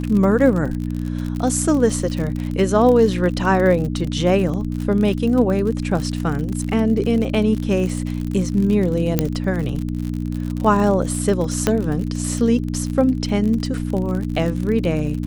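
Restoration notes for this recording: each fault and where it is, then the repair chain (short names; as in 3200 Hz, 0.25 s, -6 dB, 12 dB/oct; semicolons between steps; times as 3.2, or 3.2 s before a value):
crackle 50/s -24 dBFS
hum 60 Hz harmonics 5 -24 dBFS
9.19 pop -3 dBFS
11.67 pop -3 dBFS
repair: de-click; de-hum 60 Hz, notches 5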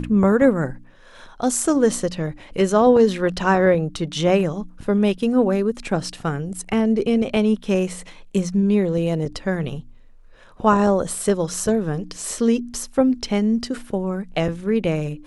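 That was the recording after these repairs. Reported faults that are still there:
none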